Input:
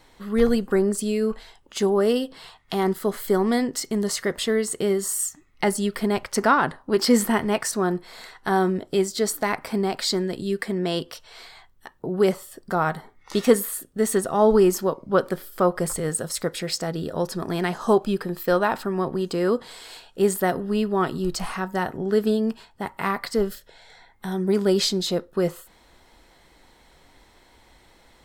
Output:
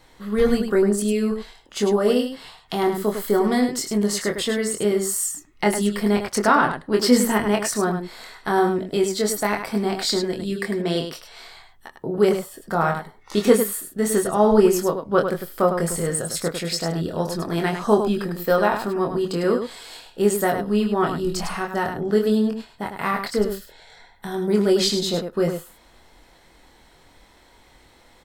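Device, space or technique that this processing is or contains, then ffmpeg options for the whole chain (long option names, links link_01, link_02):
slapback doubling: -filter_complex "[0:a]asplit=3[link_01][link_02][link_03];[link_02]adelay=24,volume=-4dB[link_04];[link_03]adelay=102,volume=-7dB[link_05];[link_01][link_04][link_05]amix=inputs=3:normalize=0"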